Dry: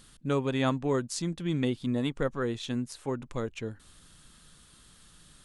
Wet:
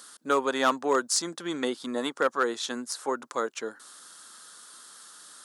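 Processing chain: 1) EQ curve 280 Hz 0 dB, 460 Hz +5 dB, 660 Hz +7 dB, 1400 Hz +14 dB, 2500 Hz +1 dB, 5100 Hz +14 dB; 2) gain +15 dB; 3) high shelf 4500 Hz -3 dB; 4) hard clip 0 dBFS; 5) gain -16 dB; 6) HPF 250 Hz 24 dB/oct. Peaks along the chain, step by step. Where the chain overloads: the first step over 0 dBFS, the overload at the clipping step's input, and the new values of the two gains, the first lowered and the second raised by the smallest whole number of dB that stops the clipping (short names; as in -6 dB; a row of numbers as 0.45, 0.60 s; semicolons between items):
-4.0, +11.0, +9.0, 0.0, -16.0, -10.5 dBFS; step 2, 9.0 dB; step 2 +6 dB, step 5 -7 dB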